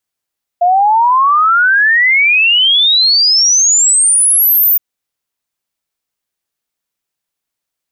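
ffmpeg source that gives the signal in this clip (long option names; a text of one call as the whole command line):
ffmpeg -f lavfi -i "aevalsrc='0.473*clip(min(t,4.17-t)/0.01,0,1)*sin(2*PI*690*4.17/log(15000/690)*(exp(log(15000/690)*t/4.17)-1))':duration=4.17:sample_rate=44100" out.wav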